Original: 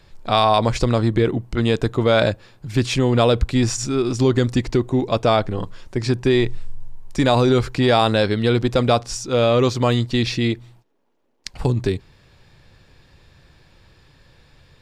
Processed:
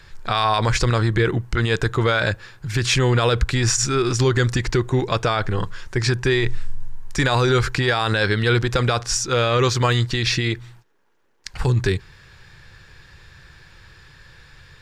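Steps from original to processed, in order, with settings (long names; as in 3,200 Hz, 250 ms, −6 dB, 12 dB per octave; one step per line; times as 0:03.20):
graphic EQ with 15 bands 250 Hz −10 dB, 630 Hz −7 dB, 1,600 Hz +8 dB, 6,300 Hz +3 dB
boost into a limiter +12.5 dB
level −8 dB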